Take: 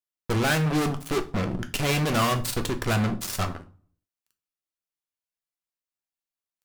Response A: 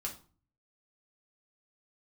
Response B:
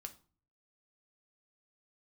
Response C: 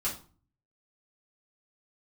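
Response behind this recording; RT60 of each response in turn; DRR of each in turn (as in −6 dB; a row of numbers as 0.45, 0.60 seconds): B; 0.40, 0.40, 0.40 seconds; −1.5, 5.5, −8.0 decibels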